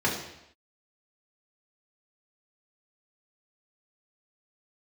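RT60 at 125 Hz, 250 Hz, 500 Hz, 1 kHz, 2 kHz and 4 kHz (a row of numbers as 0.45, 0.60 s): 0.75, 0.75, 0.80, 0.80, 0.85, 0.80 s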